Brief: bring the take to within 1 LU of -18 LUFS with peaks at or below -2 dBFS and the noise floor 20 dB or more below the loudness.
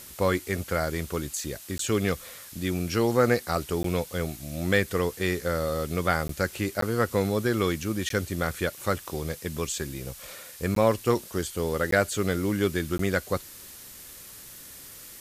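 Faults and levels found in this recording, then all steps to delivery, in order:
dropouts 8; longest dropout 13 ms; noise floor -45 dBFS; noise floor target -48 dBFS; loudness -27.5 LUFS; peak level -8.0 dBFS; loudness target -18.0 LUFS
-> interpolate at 1.78/3.83/6.28/6.81/8.09/10.75/11.91/12.98 s, 13 ms; noise print and reduce 6 dB; trim +9.5 dB; peak limiter -2 dBFS

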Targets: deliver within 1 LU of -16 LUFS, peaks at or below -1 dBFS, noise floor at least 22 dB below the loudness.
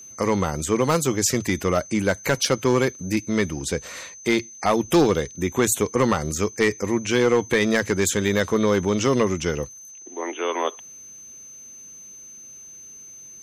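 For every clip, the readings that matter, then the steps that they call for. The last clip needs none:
clipped samples 0.5%; clipping level -11.0 dBFS; steady tone 6.2 kHz; tone level -40 dBFS; loudness -22.5 LUFS; peak level -11.0 dBFS; loudness target -16.0 LUFS
-> clip repair -11 dBFS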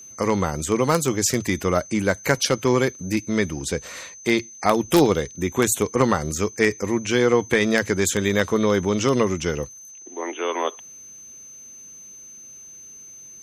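clipped samples 0.0%; steady tone 6.2 kHz; tone level -40 dBFS
-> band-stop 6.2 kHz, Q 30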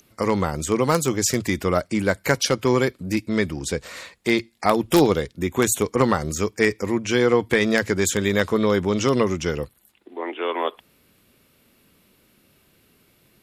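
steady tone not found; loudness -22.0 LUFS; peak level -2.0 dBFS; loudness target -16.0 LUFS
-> trim +6 dB; peak limiter -1 dBFS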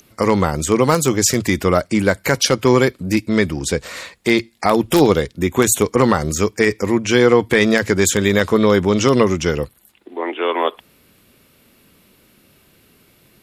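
loudness -16.5 LUFS; peak level -1.0 dBFS; noise floor -55 dBFS

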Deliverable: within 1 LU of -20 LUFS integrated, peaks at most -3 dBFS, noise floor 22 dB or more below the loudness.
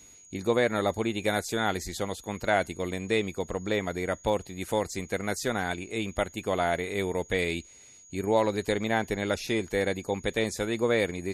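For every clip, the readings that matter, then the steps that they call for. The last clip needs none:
steady tone 6.7 kHz; tone level -51 dBFS; loudness -29.0 LUFS; peak level -10.5 dBFS; loudness target -20.0 LUFS
-> band-stop 6.7 kHz, Q 30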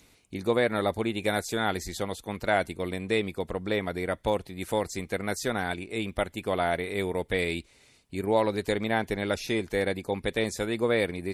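steady tone not found; loudness -29.0 LUFS; peak level -10.5 dBFS; loudness target -20.0 LUFS
-> trim +9 dB; peak limiter -3 dBFS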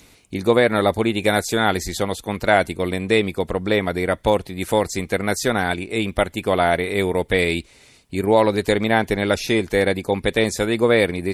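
loudness -20.0 LUFS; peak level -3.0 dBFS; noise floor -52 dBFS

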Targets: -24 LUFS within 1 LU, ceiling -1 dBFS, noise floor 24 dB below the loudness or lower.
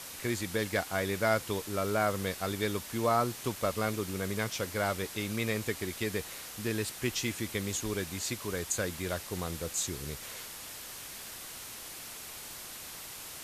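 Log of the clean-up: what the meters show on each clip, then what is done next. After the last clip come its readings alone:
noise floor -45 dBFS; noise floor target -58 dBFS; loudness -34.0 LUFS; peak level -14.0 dBFS; loudness target -24.0 LUFS
-> noise print and reduce 13 dB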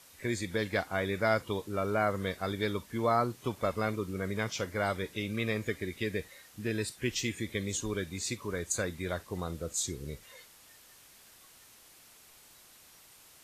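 noise floor -58 dBFS; loudness -33.5 LUFS; peak level -14.5 dBFS; loudness target -24.0 LUFS
-> trim +9.5 dB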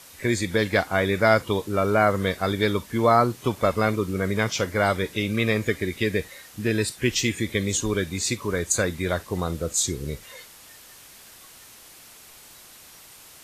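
loudness -24.0 LUFS; peak level -5.0 dBFS; noise floor -48 dBFS

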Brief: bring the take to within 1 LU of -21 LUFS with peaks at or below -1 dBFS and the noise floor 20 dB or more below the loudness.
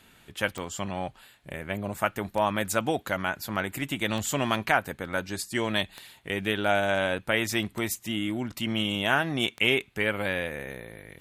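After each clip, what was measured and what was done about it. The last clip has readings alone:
clicks found 6; loudness -28.0 LUFS; peak level -6.5 dBFS; loudness target -21.0 LUFS
-> de-click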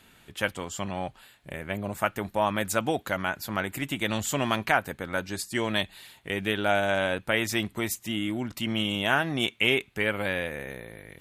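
clicks found 0; loudness -28.0 LUFS; peak level -6.5 dBFS; loudness target -21.0 LUFS
-> trim +7 dB; peak limiter -1 dBFS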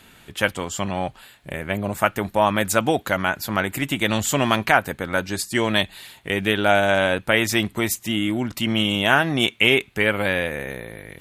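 loudness -21.5 LUFS; peak level -1.0 dBFS; noise floor -51 dBFS

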